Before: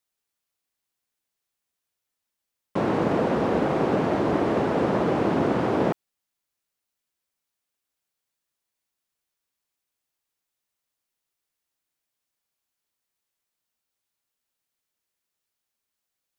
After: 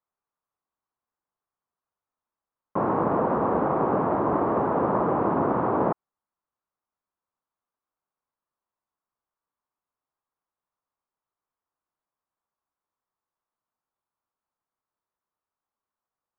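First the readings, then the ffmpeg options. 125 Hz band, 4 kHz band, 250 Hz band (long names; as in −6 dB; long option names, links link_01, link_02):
−3.0 dB, below −20 dB, −2.5 dB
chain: -af "lowpass=frequency=1100:width_type=q:width=2.7,volume=-3dB"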